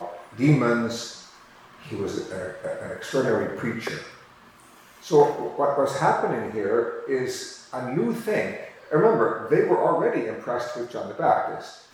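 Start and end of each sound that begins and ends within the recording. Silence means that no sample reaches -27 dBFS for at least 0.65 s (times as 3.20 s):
1.92–3.98 s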